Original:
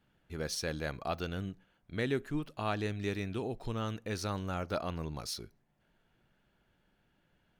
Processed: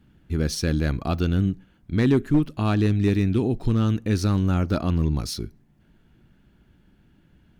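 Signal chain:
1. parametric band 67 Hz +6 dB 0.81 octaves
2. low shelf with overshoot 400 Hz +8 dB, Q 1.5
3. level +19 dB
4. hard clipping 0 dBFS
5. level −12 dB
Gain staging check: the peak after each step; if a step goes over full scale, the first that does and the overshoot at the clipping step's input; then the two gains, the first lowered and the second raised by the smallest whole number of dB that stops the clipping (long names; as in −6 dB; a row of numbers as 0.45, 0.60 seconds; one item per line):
−21.0, −14.5, +4.5, 0.0, −12.0 dBFS
step 3, 4.5 dB
step 3 +14 dB, step 5 −7 dB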